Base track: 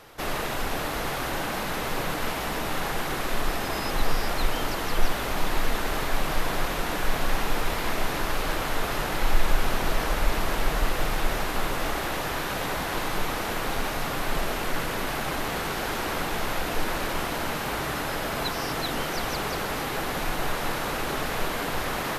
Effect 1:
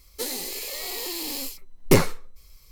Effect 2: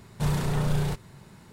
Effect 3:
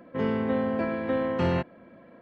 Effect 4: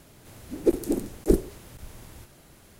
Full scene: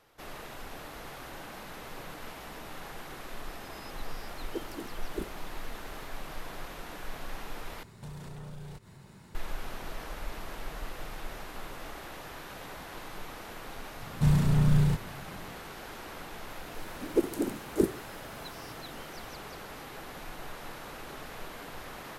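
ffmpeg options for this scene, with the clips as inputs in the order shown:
-filter_complex "[4:a]asplit=2[s0][s1];[2:a]asplit=2[s2][s3];[0:a]volume=0.188[s4];[s2]acompressor=threshold=0.00631:ratio=3:attack=6.2:release=152:knee=6:detection=peak[s5];[s3]lowshelf=f=310:t=q:w=1.5:g=6.5[s6];[s1]highpass=110[s7];[s4]asplit=2[s8][s9];[s8]atrim=end=7.834[s10];[s5]atrim=end=1.52,asetpts=PTS-STARTPTS,volume=0.794[s11];[s9]atrim=start=9.346[s12];[s0]atrim=end=2.79,asetpts=PTS-STARTPTS,volume=0.15,afade=t=in:d=0.004:c=hsin,afade=t=out:st=2.786:d=0.004:c=hsin,adelay=3880[s13];[s6]atrim=end=1.52,asetpts=PTS-STARTPTS,volume=0.596,afade=t=in:d=0.004:c=hsin,afade=t=out:st=1.516:d=0.004:c=hsin,adelay=14010[s14];[s7]atrim=end=2.79,asetpts=PTS-STARTPTS,volume=0.596,afade=t=in:d=0.004:c=hsin,afade=t=out:st=2.786:d=0.004:c=hsin,adelay=16500[s15];[s10][s11]acrossfade=d=0.004:c1=hsin:c2=hsin[s16];[s16][s12]acrossfade=d=0.004:c1=hsin:c2=hsin[s17];[s17][s13][s14][s15]amix=inputs=4:normalize=0"

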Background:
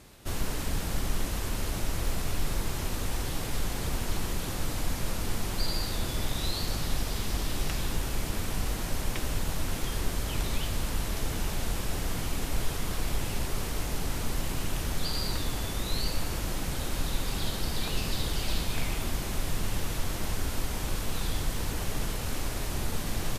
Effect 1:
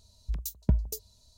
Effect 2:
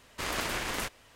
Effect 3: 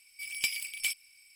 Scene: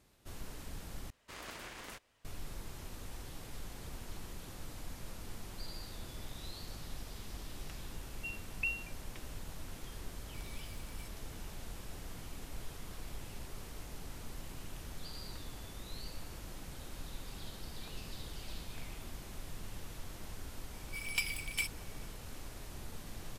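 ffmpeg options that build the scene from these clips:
-filter_complex "[3:a]asplit=2[s0][s1];[0:a]volume=0.178[s2];[1:a]lowpass=f=2400:t=q:w=0.5098,lowpass=f=2400:t=q:w=0.6013,lowpass=f=2400:t=q:w=0.9,lowpass=f=2400:t=q:w=2.563,afreqshift=-2800[s3];[s0]alimiter=level_in=2:limit=0.0631:level=0:latency=1:release=71,volume=0.501[s4];[s1]equalizer=f=1100:t=o:w=1.4:g=14.5[s5];[s2]asplit=2[s6][s7];[s6]atrim=end=1.104[s8];[2:a]atrim=end=1.15,asetpts=PTS-STARTPTS,volume=0.188[s9];[s7]atrim=start=2.246[s10];[s3]atrim=end=1.37,asetpts=PTS-STARTPTS,volume=0.224,afade=t=in:d=0.004:c=hsin,afade=t=out:st=1.366:d=0.004:c=hsin,adelay=350154S[s11];[s4]atrim=end=1.35,asetpts=PTS-STARTPTS,volume=0.133,afade=t=in:d=0.004:c=hsin,afade=t=out:st=1.346:d=0.004:c=hsin,adelay=10150[s12];[s5]atrim=end=1.35,asetpts=PTS-STARTPTS,volume=0.447,afade=t=in:d=0.004:c=hsin,afade=t=out:st=1.346:d=0.004:c=hsin,adelay=20740[s13];[s8][s9]acrossfade=d=0.004:c1=hsin:c2=hsin[s14];[s14][s10]acrossfade=d=0.004:c1=hsin:c2=hsin[s15];[s15][s11][s12][s13]amix=inputs=4:normalize=0"

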